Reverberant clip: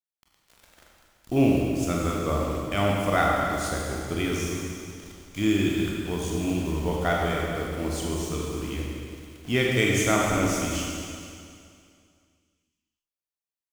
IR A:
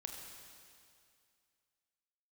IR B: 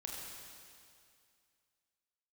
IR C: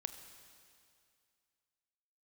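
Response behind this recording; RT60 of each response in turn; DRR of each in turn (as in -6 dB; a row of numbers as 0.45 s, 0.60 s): B; 2.3 s, 2.3 s, 2.3 s; 1.5 dB, -2.5 dB, 8.5 dB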